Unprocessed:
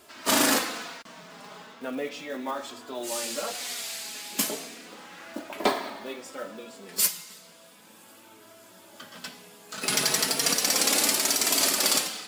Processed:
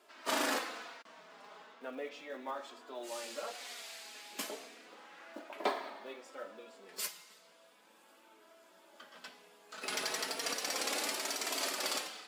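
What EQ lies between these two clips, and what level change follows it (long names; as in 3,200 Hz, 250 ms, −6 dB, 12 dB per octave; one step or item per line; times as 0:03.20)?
high-pass filter 360 Hz 12 dB per octave
high-shelf EQ 5,100 Hz −11.5 dB
−7.5 dB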